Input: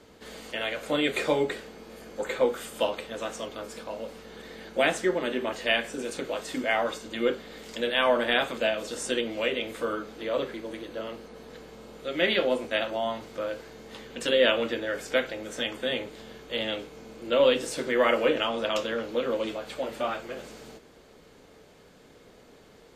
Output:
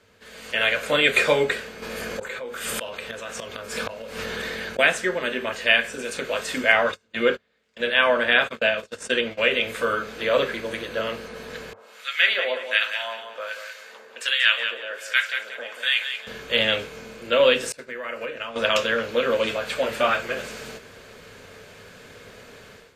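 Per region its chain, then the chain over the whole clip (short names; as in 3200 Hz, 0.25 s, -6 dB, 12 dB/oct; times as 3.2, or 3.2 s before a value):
1.82–4.79 flipped gate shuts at -28 dBFS, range -28 dB + fast leveller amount 70%
6.72–9.51 gate -35 dBFS, range -30 dB + HPF 44 Hz + high shelf 6500 Hz -8.5 dB
11.73–16.27 HPF 760 Hz + harmonic tremolo 1.3 Hz, depth 100%, crossover 1100 Hz + feedback echo 0.184 s, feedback 29%, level -8.5 dB
17.72–18.56 expander -24 dBFS + bell 3300 Hz -8.5 dB 0.22 oct + compressor 8:1, threshold -36 dBFS
whole clip: low shelf 260 Hz -5.5 dB; AGC gain up to 14 dB; thirty-one-band EQ 100 Hz +10 dB, 315 Hz -11 dB, 800 Hz -6 dB, 1600 Hz +6 dB, 2500 Hz +5 dB; gain -3.5 dB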